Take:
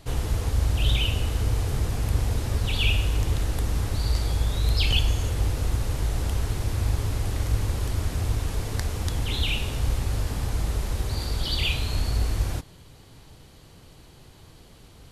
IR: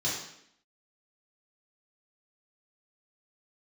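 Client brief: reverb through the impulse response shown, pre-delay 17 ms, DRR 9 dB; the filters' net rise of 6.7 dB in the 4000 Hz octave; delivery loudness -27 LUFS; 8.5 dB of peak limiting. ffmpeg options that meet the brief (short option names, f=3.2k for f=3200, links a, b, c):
-filter_complex "[0:a]equalizer=f=4k:t=o:g=9,alimiter=limit=-15dB:level=0:latency=1,asplit=2[a][b];[1:a]atrim=start_sample=2205,adelay=17[c];[b][c]afir=irnorm=-1:irlink=0,volume=-16.5dB[d];[a][d]amix=inputs=2:normalize=0,volume=-1.5dB"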